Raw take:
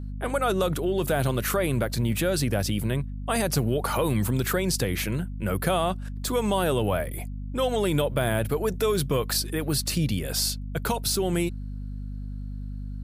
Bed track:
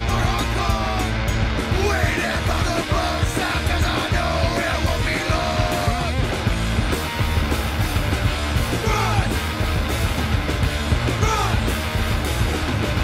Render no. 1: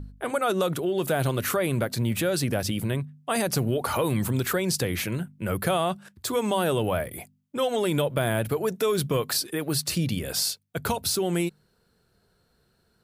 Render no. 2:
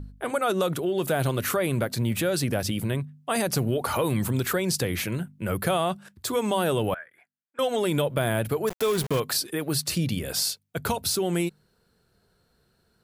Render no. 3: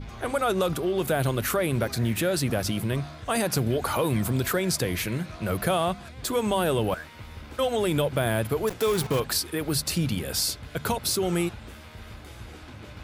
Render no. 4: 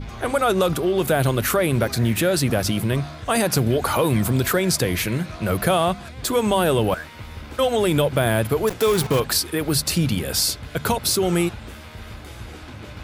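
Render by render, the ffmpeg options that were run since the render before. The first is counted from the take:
-af "bandreject=f=50:t=h:w=4,bandreject=f=100:t=h:w=4,bandreject=f=150:t=h:w=4,bandreject=f=200:t=h:w=4,bandreject=f=250:t=h:w=4"
-filter_complex "[0:a]asettb=1/sr,asplit=3[s0][s1][s2];[s0]atrim=end=6.944[s3];[s1]atrim=start=6.94:end=7.59,asetpts=PTS-STARTPTS,afade=t=in:d=0.004:c=qsin,afade=t=out:st=0.646:d=0.004:c=qsin,bandpass=f=1600:t=q:w=6.5[s4];[s2]atrim=start=7.586[s5];[s3][s4]acrossfade=d=0.004:c1=hsin:c2=qsin[s6];[s6][s5]acrossfade=d=0.004:c1=qsin:c2=hsin,asettb=1/sr,asplit=3[s7][s8][s9];[s7]atrim=end=8.674[s10];[s8]atrim=start=8.67:end=9.2,asetpts=PTS-STARTPTS,afade=t=in:d=0.004:c=qsin,afade=t=out:st=0.526:d=0.004:c=qsin,aeval=exprs='val(0)*gte(abs(val(0)),0.0335)':c=same[s11];[s9]atrim=start=9.196[s12];[s10][s11]acrossfade=d=0.004:c1=hsin:c2=qsin[s13];[s13][s12]acrossfade=d=0.004:c1=qsin:c2=hsin"
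-filter_complex "[1:a]volume=0.0841[s0];[0:a][s0]amix=inputs=2:normalize=0"
-af "volume=1.88"

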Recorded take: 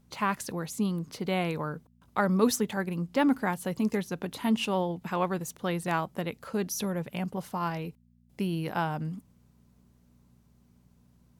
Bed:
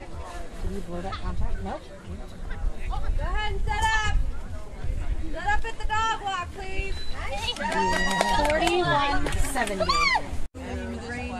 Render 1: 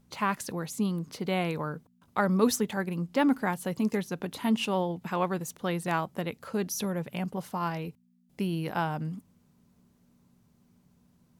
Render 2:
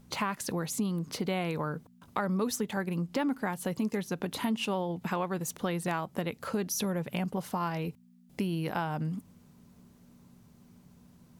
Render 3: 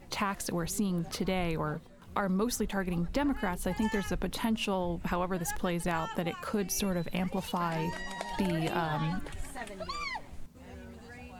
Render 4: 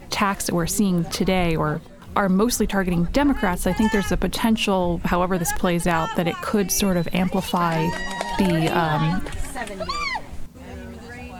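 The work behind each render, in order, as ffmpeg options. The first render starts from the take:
-af "bandreject=f=60:t=h:w=4,bandreject=f=120:t=h:w=4"
-filter_complex "[0:a]asplit=2[s0][s1];[s1]alimiter=limit=0.112:level=0:latency=1:release=206,volume=1.19[s2];[s0][s2]amix=inputs=2:normalize=0,acompressor=threshold=0.0282:ratio=3"
-filter_complex "[1:a]volume=0.178[s0];[0:a][s0]amix=inputs=2:normalize=0"
-af "volume=3.55"

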